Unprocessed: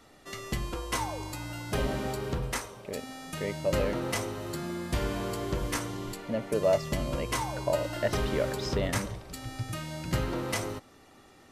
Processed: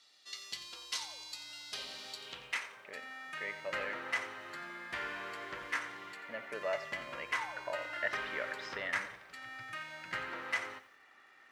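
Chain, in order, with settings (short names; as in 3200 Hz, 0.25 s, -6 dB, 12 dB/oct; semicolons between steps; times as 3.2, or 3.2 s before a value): band-pass sweep 4300 Hz -> 1800 Hz, 2.1–2.76; lo-fi delay 88 ms, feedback 35%, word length 11-bit, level -13.5 dB; gain +4 dB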